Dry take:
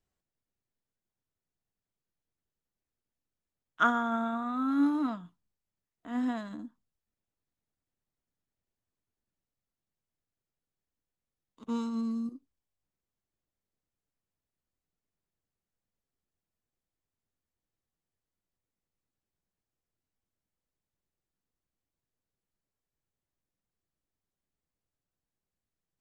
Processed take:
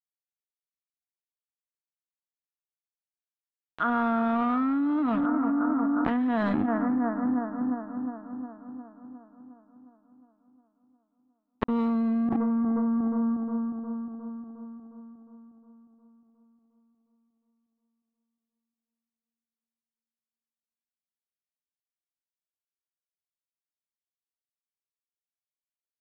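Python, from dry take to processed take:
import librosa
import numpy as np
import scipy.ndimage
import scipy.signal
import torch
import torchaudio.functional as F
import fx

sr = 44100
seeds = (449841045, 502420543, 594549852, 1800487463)

y = np.sign(x) * np.maximum(np.abs(x) - 10.0 ** (-44.5 / 20.0), 0.0)
y = fx.air_absorb(y, sr, metres=490.0)
y = fx.echo_bbd(y, sr, ms=358, stages=4096, feedback_pct=62, wet_db=-23)
y = fx.env_flatten(y, sr, amount_pct=100)
y = F.gain(torch.from_numpy(y), -1.0).numpy()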